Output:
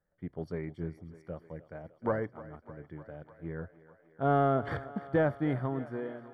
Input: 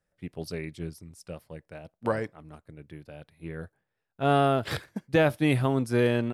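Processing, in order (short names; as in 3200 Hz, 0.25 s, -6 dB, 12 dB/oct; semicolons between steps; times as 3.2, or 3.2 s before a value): ending faded out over 1.32 s; notches 60/120 Hz; in parallel at -3 dB: soft clip -26.5 dBFS, distortion -7 dB; on the sum: polynomial smoothing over 41 samples; thinning echo 0.302 s, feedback 76%, high-pass 260 Hz, level -16.5 dB; gain -5.5 dB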